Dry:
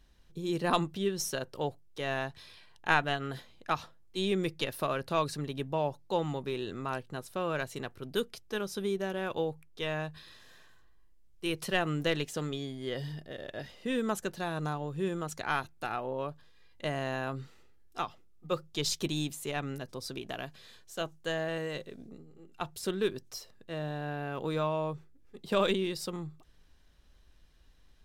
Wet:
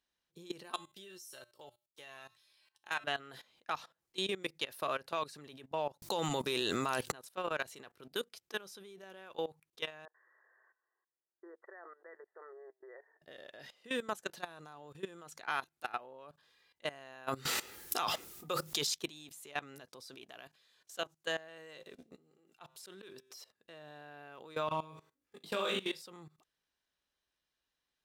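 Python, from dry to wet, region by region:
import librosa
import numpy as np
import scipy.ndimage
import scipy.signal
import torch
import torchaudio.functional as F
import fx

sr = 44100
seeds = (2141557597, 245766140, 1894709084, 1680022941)

y = fx.chain(x, sr, fx.high_shelf(hz=6100.0, db=11.5),
    fx.comb_fb(f0_hz=120.0, decay_s=0.26, harmonics='odd', damping=0.0, mix_pct=80), at=(0.63, 3.04))
y = fx.chain(y, sr, fx.bass_treble(bass_db=3, treble_db=10),
    fx.env_flatten(amount_pct=100), at=(6.02, 7.12))
y = fx.chain(y, sr, fx.level_steps(step_db=20),
    fx.brickwall_bandpass(low_hz=330.0, high_hz=2000.0), at=(10.05, 13.22))
y = fx.chain(y, sr, fx.high_shelf(hz=7200.0, db=11.0),
    fx.env_flatten(amount_pct=100), at=(17.28, 18.87))
y = fx.chain(y, sr, fx.comb_fb(f0_hz=130.0, decay_s=1.1, harmonics='all', damping=0.0, mix_pct=30),
    fx.auto_swell(attack_ms=133.0),
    fx.env_flatten(amount_pct=50), at=(21.7, 23.37))
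y = fx.chain(y, sr, fx.high_shelf(hz=8300.0, db=3.5),
    fx.doubler(ms=20.0, db=-2.5),
    fx.room_flutter(wall_m=6.5, rt60_s=0.33), at=(24.66, 26.02))
y = fx.highpass(y, sr, hz=710.0, slope=6)
y = fx.level_steps(y, sr, step_db=18)
y = F.gain(torch.from_numpy(y), 2.0).numpy()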